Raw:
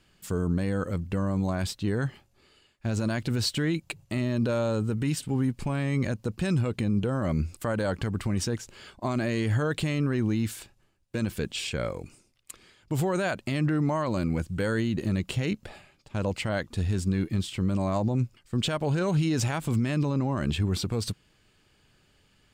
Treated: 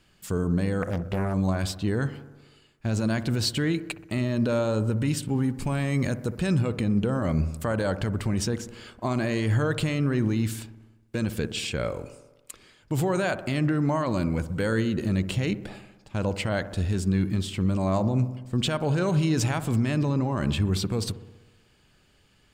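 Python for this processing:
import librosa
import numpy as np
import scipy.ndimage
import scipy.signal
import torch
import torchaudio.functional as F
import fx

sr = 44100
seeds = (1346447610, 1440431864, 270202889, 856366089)

y = fx.high_shelf(x, sr, hz=7500.0, db=9.0, at=(5.58, 6.38))
y = fx.echo_wet_lowpass(y, sr, ms=63, feedback_pct=67, hz=1300.0, wet_db=-12.5)
y = fx.doppler_dist(y, sr, depth_ms=0.86, at=(0.82, 1.34))
y = F.gain(torch.from_numpy(y), 1.5).numpy()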